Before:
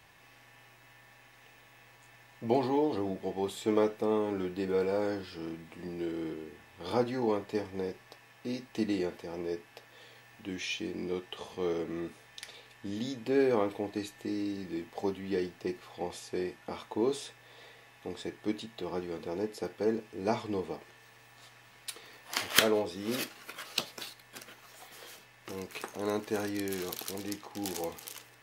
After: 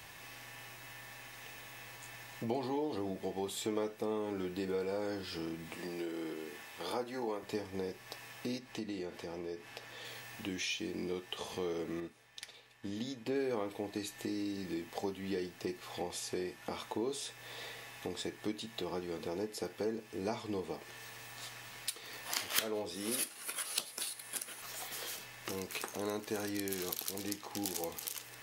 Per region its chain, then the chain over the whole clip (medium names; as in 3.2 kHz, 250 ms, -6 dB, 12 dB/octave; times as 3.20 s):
5.75–7.43 s: high-pass 450 Hz 6 dB/octave + dynamic bell 3.9 kHz, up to -5 dB, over -54 dBFS, Q 0.79
8.58–10.05 s: treble shelf 9.5 kHz -10 dB + compression 1.5:1, threshold -53 dBFS
12.00–13.36 s: treble shelf 6 kHz -6 dB + upward expansion, over -54 dBFS
22.94–24.62 s: high-pass 190 Hz 6 dB/octave + peaking EQ 10 kHz +14.5 dB 0.33 oct + hard clipper -16.5 dBFS
whole clip: treble shelf 3.9 kHz +7.5 dB; compression 2.5:1, threshold -45 dBFS; trim +5.5 dB